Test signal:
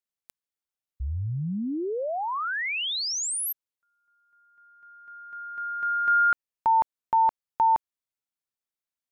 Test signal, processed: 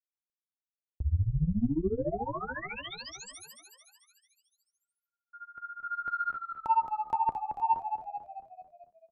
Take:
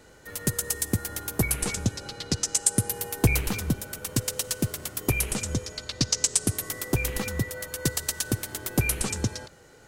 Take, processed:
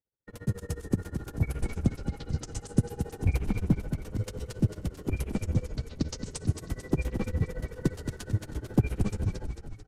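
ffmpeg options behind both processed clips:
-filter_complex "[0:a]aemphasis=mode=reproduction:type=50kf,agate=range=-41dB:threshold=-41dB:ratio=16:release=104:detection=rms,tiltshelf=f=650:g=7,flanger=delay=9.4:depth=4:regen=63:speed=0.23:shape=sinusoidal,asplit=2[a][b];[b]asoftclip=type=tanh:threshold=-22.5dB,volume=-7.5dB[c];[a][c]amix=inputs=2:normalize=0,tremolo=f=14:d=0.94,asplit=2[d][e];[e]asplit=7[f][g][h][i][j][k][l];[f]adelay=221,afreqshift=-41,volume=-7.5dB[m];[g]adelay=442,afreqshift=-82,volume=-12.5dB[n];[h]adelay=663,afreqshift=-123,volume=-17.6dB[o];[i]adelay=884,afreqshift=-164,volume=-22.6dB[p];[j]adelay=1105,afreqshift=-205,volume=-27.6dB[q];[k]adelay=1326,afreqshift=-246,volume=-32.7dB[r];[l]adelay=1547,afreqshift=-287,volume=-37.7dB[s];[m][n][o][p][q][r][s]amix=inputs=7:normalize=0[t];[d][t]amix=inputs=2:normalize=0,aresample=32000,aresample=44100"

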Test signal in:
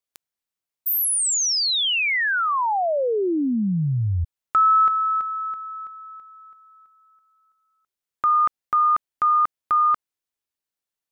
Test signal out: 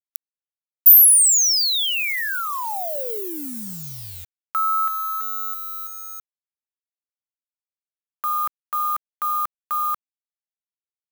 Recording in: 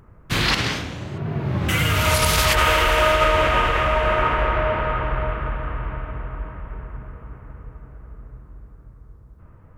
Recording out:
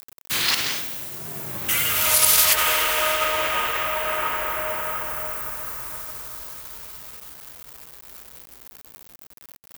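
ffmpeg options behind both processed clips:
-af "acrusher=bits=6:mix=0:aa=0.000001,aemphasis=mode=production:type=riaa,volume=-6dB"

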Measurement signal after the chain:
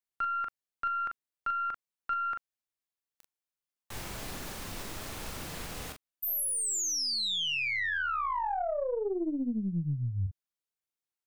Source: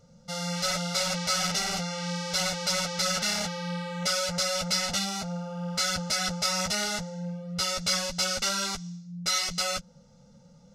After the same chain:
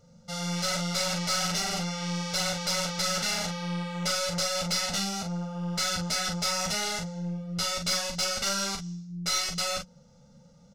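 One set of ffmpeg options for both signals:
-af "aecho=1:1:29|41:0.15|0.501,aeval=exprs='(tanh(7.94*val(0)+0.4)-tanh(0.4))/7.94':c=same"

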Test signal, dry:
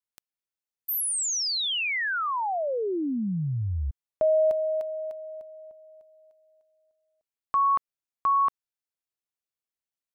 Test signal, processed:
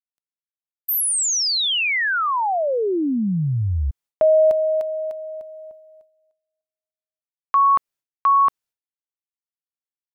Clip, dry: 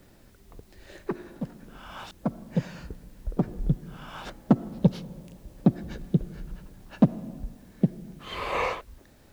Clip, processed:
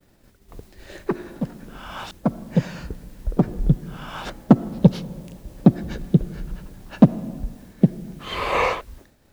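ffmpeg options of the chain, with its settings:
-af "agate=range=-35dB:threshold=-47dB:ratio=3:release=292:detection=peak,volume=7dB"

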